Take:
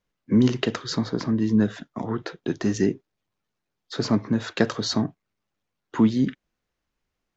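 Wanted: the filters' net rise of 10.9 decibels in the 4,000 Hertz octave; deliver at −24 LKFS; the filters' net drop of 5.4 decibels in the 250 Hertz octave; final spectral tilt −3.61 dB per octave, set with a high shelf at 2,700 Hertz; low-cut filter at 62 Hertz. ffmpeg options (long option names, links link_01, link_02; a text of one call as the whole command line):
ffmpeg -i in.wav -af "highpass=62,equalizer=frequency=250:width_type=o:gain=-6.5,highshelf=frequency=2700:gain=6.5,equalizer=frequency=4000:width_type=o:gain=7.5" out.wav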